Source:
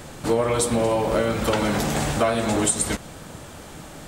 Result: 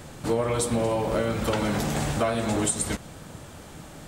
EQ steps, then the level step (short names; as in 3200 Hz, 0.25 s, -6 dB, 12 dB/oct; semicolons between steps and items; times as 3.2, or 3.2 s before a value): bell 110 Hz +3.5 dB 2 oct; -4.5 dB